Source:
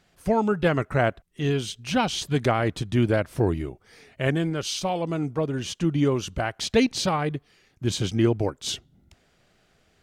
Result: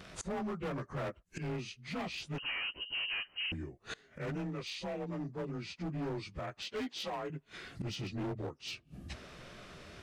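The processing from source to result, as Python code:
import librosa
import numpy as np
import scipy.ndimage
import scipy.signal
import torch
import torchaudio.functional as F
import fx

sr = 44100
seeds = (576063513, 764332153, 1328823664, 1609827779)

y = fx.partial_stretch(x, sr, pct=91)
y = fx.highpass(y, sr, hz=300.0, slope=12, at=(6.62, 7.3))
y = np.clip(y, -10.0 ** (-24.5 / 20.0), 10.0 ** (-24.5 / 20.0))
y = fx.gate_flip(y, sr, shuts_db=-44.0, range_db=-25)
y = fx.freq_invert(y, sr, carrier_hz=3000, at=(2.38, 3.52))
y = y * 10.0 ** (15.0 / 20.0)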